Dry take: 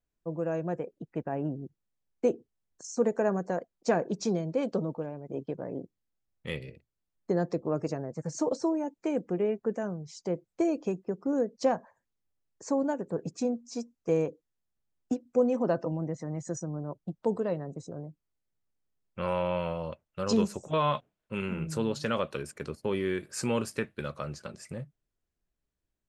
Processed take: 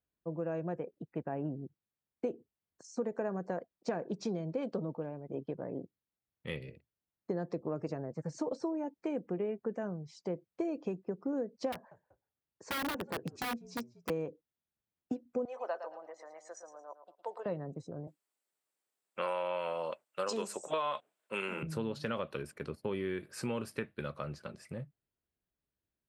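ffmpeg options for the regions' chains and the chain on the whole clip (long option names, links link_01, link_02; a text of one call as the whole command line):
ffmpeg -i in.wav -filter_complex "[0:a]asettb=1/sr,asplit=3[link_01][link_02][link_03];[link_01]atrim=end=11.724[link_04];[link_02]atrim=start=11.72:end=14.1,asetpts=PTS-STARTPTS,afade=type=in:duration=0.004:curve=qsin,afade=type=out:start_time=2.376:duration=0.004:curve=qsin,asplit=3[link_05][link_06][link_07];[link_06]adelay=191,afreqshift=-60,volume=-23dB[link_08];[link_07]adelay=382,afreqshift=-120,volume=-32.4dB[link_09];[link_05][link_08][link_09]amix=inputs=3:normalize=0,atrim=end_sample=104958,aeval=exprs='(mod(18.8*val(0)+1,2)-1)/18.8':channel_layout=same[link_10];[link_03]atrim=start=14.096[link_11];[link_04][link_10]acrossfade=duration=0.004:curve1=hsin:curve2=qsin[link_12];[link_12][link_11]acrossfade=duration=0.004:curve1=qsin:curve2=hsin,asettb=1/sr,asplit=3[link_13][link_14][link_15];[link_13]atrim=end=15.454[link_16];[link_14]atrim=start=15.45:end=17.46,asetpts=PTS-STARTPTS,afade=type=in:duration=0.004:curve=qsin,afade=type=out:start_time=2.006:duration=0.004:curve=qsin,highpass=frequency=620:width=0.5412,highpass=frequency=620:width=1.3066,aecho=1:1:111|222|333:0.282|0.0817|0.0237,atrim=end_sample=88641[link_17];[link_15]atrim=start=17.456[link_18];[link_16][link_17]acrossfade=duration=0.004:curve1=hsin:curve2=qsin[link_19];[link_19][link_18]acrossfade=duration=0.004:curve1=qsin:curve2=hsin,asettb=1/sr,asplit=3[link_20][link_21][link_22];[link_20]atrim=end=18.074[link_23];[link_21]atrim=start=18.07:end=21.63,asetpts=PTS-STARTPTS,afade=type=in:duration=0.004:curve=qsin,afade=type=out:start_time=3.556:duration=0.004:curve=qsin,highpass=460,equalizer=frequency=7800:width=1.9:gain=14,acontrast=78[link_24];[link_22]atrim=start=21.626[link_25];[link_23][link_24]acrossfade=duration=0.004:curve1=hsin:curve2=qsin[link_26];[link_26][link_25]acrossfade=duration=0.004:curve1=qsin:curve2=hsin,acompressor=threshold=-28dB:ratio=6,highpass=63,equalizer=frequency=6900:width_type=o:width=0.74:gain=-10.5,volume=-3dB" out.wav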